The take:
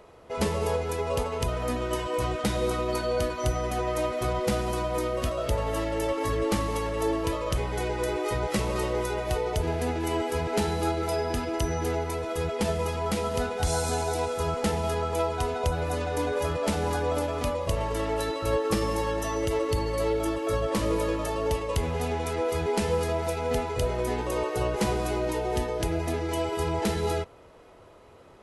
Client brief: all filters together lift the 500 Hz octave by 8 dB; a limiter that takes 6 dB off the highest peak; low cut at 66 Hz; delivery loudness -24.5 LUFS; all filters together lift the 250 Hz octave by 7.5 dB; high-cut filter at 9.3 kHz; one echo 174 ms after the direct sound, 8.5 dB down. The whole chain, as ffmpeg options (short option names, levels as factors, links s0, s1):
-af "highpass=66,lowpass=9300,equalizer=f=250:t=o:g=7.5,equalizer=f=500:t=o:g=7.5,alimiter=limit=0.211:level=0:latency=1,aecho=1:1:174:0.376,volume=0.794"